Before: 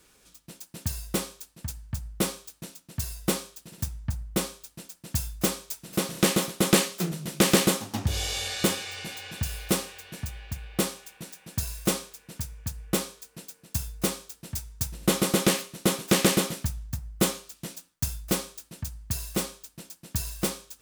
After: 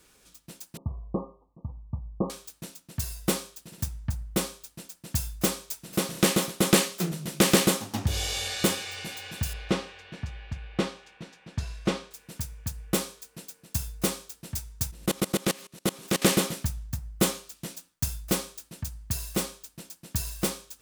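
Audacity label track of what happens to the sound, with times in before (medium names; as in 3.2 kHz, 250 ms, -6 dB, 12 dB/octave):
0.770000	2.300000	Chebyshev low-pass 1.2 kHz, order 10
9.530000	12.110000	low-pass 3.7 kHz
14.910000	16.220000	level held to a coarse grid steps of 23 dB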